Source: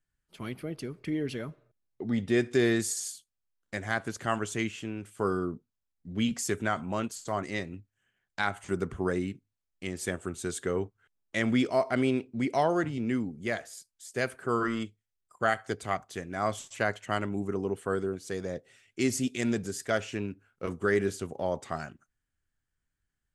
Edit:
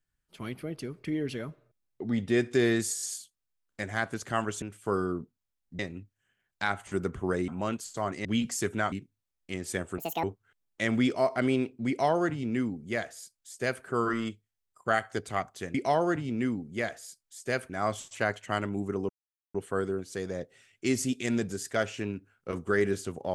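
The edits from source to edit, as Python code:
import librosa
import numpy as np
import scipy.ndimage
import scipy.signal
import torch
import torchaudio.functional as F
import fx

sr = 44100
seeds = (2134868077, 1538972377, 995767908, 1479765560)

y = fx.edit(x, sr, fx.stutter(start_s=2.95, slice_s=0.02, count=4),
    fx.cut(start_s=4.56, length_s=0.39),
    fx.swap(start_s=6.12, length_s=0.67, other_s=7.56, other_length_s=1.69),
    fx.speed_span(start_s=10.31, length_s=0.47, speed=1.85),
    fx.duplicate(start_s=12.43, length_s=1.95, to_s=16.29),
    fx.insert_silence(at_s=17.69, length_s=0.45), tone=tone)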